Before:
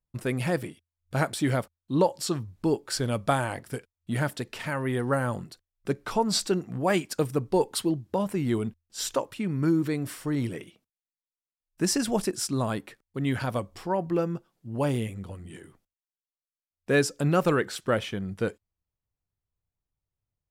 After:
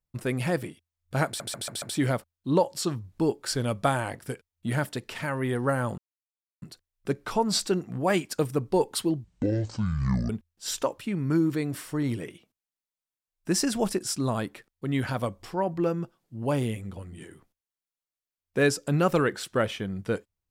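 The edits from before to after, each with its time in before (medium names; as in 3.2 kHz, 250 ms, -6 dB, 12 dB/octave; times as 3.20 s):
1.26 s: stutter 0.14 s, 5 plays
5.42 s: insert silence 0.64 s
8.04–8.62 s: speed 55%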